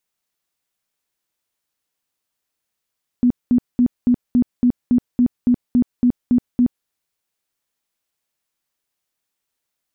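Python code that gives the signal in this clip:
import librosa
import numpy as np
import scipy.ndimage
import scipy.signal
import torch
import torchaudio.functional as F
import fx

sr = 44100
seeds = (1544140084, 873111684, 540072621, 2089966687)

y = fx.tone_burst(sr, hz=245.0, cycles=18, every_s=0.28, bursts=13, level_db=-10.5)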